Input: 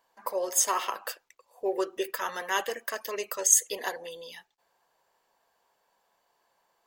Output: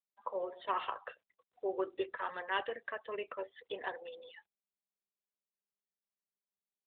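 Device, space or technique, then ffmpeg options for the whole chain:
mobile call with aggressive noise cancelling: -af "highpass=110,afftdn=noise_reduction=34:noise_floor=-43,volume=-5.5dB" -ar 8000 -c:a libopencore_amrnb -b:a 12200

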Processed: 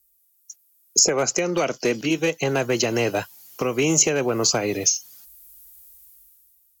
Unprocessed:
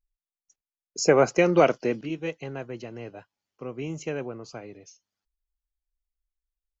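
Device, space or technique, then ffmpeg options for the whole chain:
FM broadcast chain: -filter_complex "[0:a]highpass=50,dynaudnorm=framelen=150:gausssize=11:maxgain=16dB,acrossover=split=320|1400[link_01][link_02][link_03];[link_01]acompressor=threshold=-35dB:ratio=4[link_04];[link_02]acompressor=threshold=-27dB:ratio=4[link_05];[link_03]acompressor=threshold=-38dB:ratio=4[link_06];[link_04][link_05][link_06]amix=inputs=3:normalize=0,aemphasis=mode=production:type=50fm,alimiter=limit=-18.5dB:level=0:latency=1:release=330,asoftclip=type=hard:threshold=-21dB,lowpass=frequency=15000:width=0.5412,lowpass=frequency=15000:width=1.3066,aemphasis=mode=production:type=50fm,volume=8dB"

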